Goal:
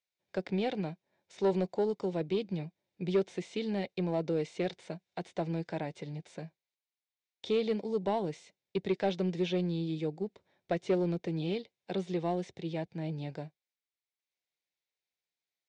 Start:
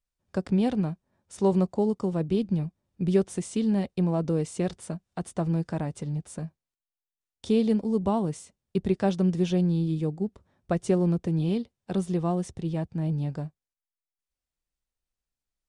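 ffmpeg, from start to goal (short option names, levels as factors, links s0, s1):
-filter_complex "[0:a]acrossover=split=3800[s0][s1];[s1]acompressor=threshold=0.00282:ratio=4:attack=1:release=60[s2];[s0][s2]amix=inputs=2:normalize=0,highpass=240,equalizer=f=240:t=q:w=4:g=-10,equalizer=f=1200:t=q:w=4:g=-10,equalizer=f=2200:t=q:w=4:g=8,equalizer=f=3800:t=q:w=4:g=6,lowpass=f=6700:w=0.5412,lowpass=f=6700:w=1.3066,asoftclip=type=tanh:threshold=0.119,volume=0.891"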